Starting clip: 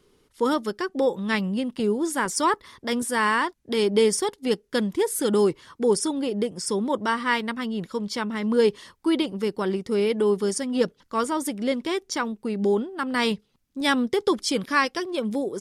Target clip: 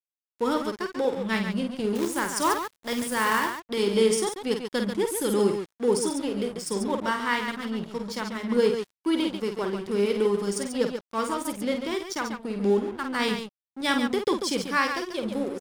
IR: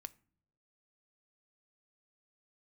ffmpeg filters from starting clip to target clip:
-filter_complex "[0:a]aecho=1:1:49.56|139.9:0.501|0.447,asettb=1/sr,asplit=3[link_01][link_02][link_03];[link_01]atrim=end=1.954[link_04];[link_02]atrim=start=1.95:end=3.6,asetpts=PTS-STARTPTS,afade=type=in:duration=0.004:curve=qsin,afade=type=out:start_time=1.646:duration=0.004:curve=qsin,acrusher=bits=3:mode=log:mix=0:aa=0.000001[link_05];[link_03]atrim=start=3.596[link_06];[link_04][link_05]acrossfade=duration=0.004:curve1=hsin:curve2=qsin[link_07];[link_07][link_06]acrossfade=duration=0.004:curve1=qsin:curve2=hsin,aeval=exprs='sgn(val(0))*max(abs(val(0))-0.0133,0)':channel_layout=same,volume=-2.5dB"

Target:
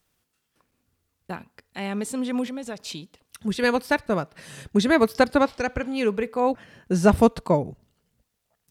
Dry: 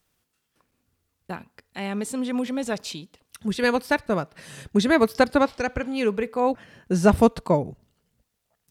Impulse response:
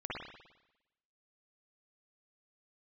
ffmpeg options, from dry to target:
-filter_complex "[0:a]asplit=3[link_01][link_02][link_03];[link_01]afade=type=out:start_time=2.48:duration=0.02[link_04];[link_02]acompressor=threshold=-30dB:ratio=6,afade=type=in:start_time=2.48:duration=0.02,afade=type=out:start_time=2.88:duration=0.02[link_05];[link_03]afade=type=in:start_time=2.88:duration=0.02[link_06];[link_04][link_05][link_06]amix=inputs=3:normalize=0"

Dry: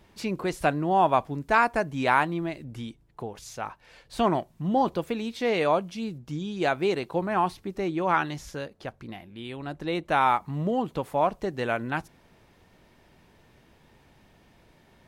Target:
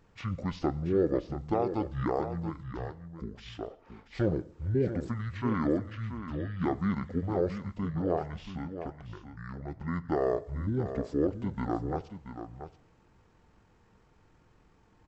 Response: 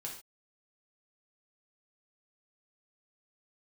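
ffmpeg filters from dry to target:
-filter_complex "[0:a]alimiter=limit=-12.5dB:level=0:latency=1:release=344,asetrate=22050,aresample=44100,atempo=2,aecho=1:1:680:0.316,asplit=2[link_01][link_02];[1:a]atrim=start_sample=2205,asetrate=27342,aresample=44100[link_03];[link_02][link_03]afir=irnorm=-1:irlink=0,volume=-16dB[link_04];[link_01][link_04]amix=inputs=2:normalize=0,volume=-5dB"

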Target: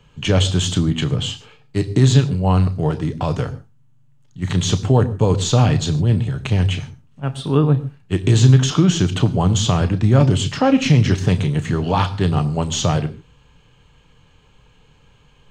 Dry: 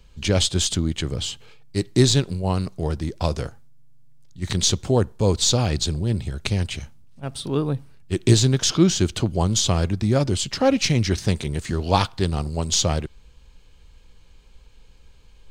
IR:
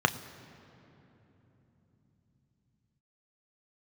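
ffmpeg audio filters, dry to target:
-filter_complex "[0:a]alimiter=limit=-11.5dB:level=0:latency=1:release=30[link_01];[1:a]atrim=start_sample=2205,afade=type=out:start_time=0.21:duration=0.01,atrim=end_sample=9702[link_02];[link_01][link_02]afir=irnorm=-1:irlink=0,volume=-7dB"

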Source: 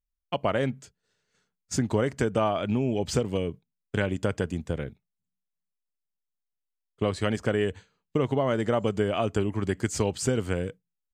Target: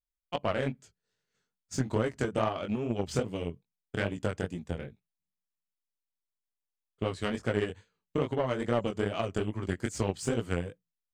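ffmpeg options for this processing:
ffmpeg -i in.wav -af "flanger=delay=17:depth=6.7:speed=2.4,aeval=exprs='0.237*(cos(1*acos(clip(val(0)/0.237,-1,1)))-cos(1*PI/2))+0.015*(cos(7*acos(clip(val(0)/0.237,-1,1)))-cos(7*PI/2))':channel_layout=same" out.wav

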